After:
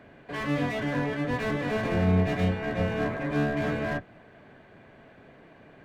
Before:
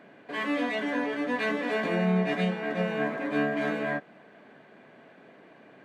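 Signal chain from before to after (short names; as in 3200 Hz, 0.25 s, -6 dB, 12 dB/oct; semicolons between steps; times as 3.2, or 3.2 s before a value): octaver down 1 oct, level 0 dB; slew limiter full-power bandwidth 45 Hz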